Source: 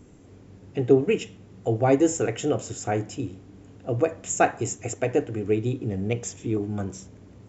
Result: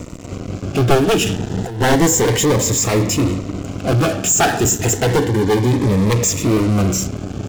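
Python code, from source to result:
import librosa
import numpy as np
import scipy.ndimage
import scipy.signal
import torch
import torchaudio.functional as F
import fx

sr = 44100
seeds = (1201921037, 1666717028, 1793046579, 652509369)

p1 = np.minimum(x, 2.0 * 10.0 ** (-21.0 / 20.0) - x)
p2 = fx.highpass(p1, sr, hz=98.0, slope=24, at=(3.92, 4.65))
p3 = fx.fuzz(p2, sr, gain_db=44.0, gate_db=-49.0)
p4 = p2 + (p3 * librosa.db_to_amplitude(-8.0))
p5 = fx.over_compress(p4, sr, threshold_db=-26.0, ratio=-1.0, at=(1.26, 1.81))
p6 = fx.notch_comb(p5, sr, f0_hz=650.0, at=(5.17, 5.71))
p7 = fx.notch_cascade(p6, sr, direction='rising', hz=0.31)
y = p7 * librosa.db_to_amplitude(5.0)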